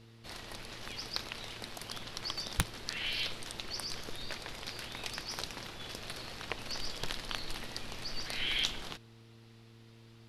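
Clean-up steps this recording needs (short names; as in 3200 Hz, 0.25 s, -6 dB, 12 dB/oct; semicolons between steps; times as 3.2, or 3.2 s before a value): clip repair -9.5 dBFS; de-hum 113.9 Hz, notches 4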